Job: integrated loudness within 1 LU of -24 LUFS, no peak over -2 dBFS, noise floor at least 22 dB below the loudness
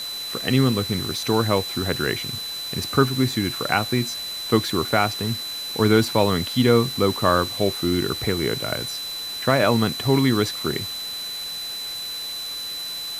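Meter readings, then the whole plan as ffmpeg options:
steady tone 4 kHz; tone level -29 dBFS; noise floor -31 dBFS; noise floor target -45 dBFS; loudness -22.5 LUFS; peak level -3.5 dBFS; loudness target -24.0 LUFS
-> -af "bandreject=f=4000:w=30"
-af "afftdn=nr=14:nf=-31"
-af "volume=0.841"

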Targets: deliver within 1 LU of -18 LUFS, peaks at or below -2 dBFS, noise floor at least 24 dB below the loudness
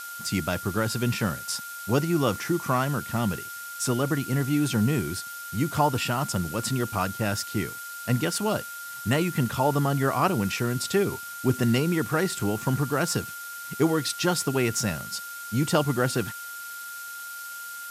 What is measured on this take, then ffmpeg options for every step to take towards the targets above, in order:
steady tone 1.4 kHz; tone level -37 dBFS; noise floor -38 dBFS; noise floor target -51 dBFS; loudness -27.0 LUFS; peak level -9.5 dBFS; loudness target -18.0 LUFS
-> -af "bandreject=f=1400:w=30"
-af "afftdn=nr=13:nf=-38"
-af "volume=2.82,alimiter=limit=0.794:level=0:latency=1"

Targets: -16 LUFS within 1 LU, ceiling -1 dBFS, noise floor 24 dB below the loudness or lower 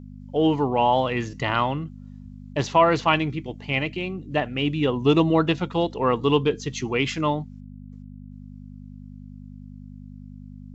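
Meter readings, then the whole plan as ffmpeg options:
hum 50 Hz; highest harmonic 250 Hz; hum level -39 dBFS; loudness -23.0 LUFS; peak level -5.5 dBFS; loudness target -16.0 LUFS
-> -af "bandreject=f=50:t=h:w=4,bandreject=f=100:t=h:w=4,bandreject=f=150:t=h:w=4,bandreject=f=200:t=h:w=4,bandreject=f=250:t=h:w=4"
-af "volume=2.24,alimiter=limit=0.891:level=0:latency=1"

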